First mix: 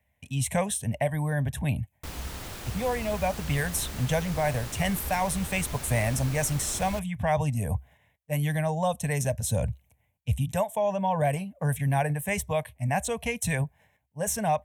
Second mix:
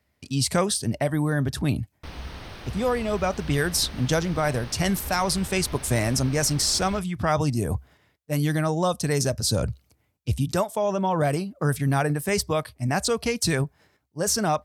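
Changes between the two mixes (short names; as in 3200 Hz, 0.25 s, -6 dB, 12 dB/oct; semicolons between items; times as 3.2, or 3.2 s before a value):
speech: remove fixed phaser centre 1300 Hz, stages 6; background: add polynomial smoothing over 15 samples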